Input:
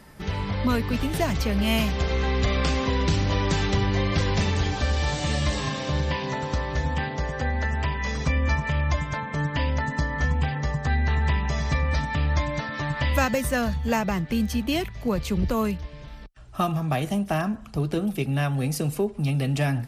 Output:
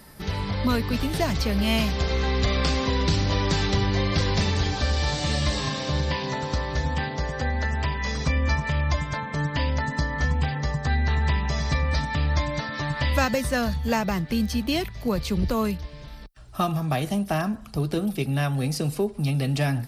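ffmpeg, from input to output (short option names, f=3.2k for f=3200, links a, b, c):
-filter_complex "[0:a]acrossover=split=7900[a][b];[b]acompressor=threshold=-54dB:ratio=4:attack=1:release=60[c];[a][c]amix=inputs=2:normalize=0,aexciter=amount=1.4:drive=6.9:freq=3.9k"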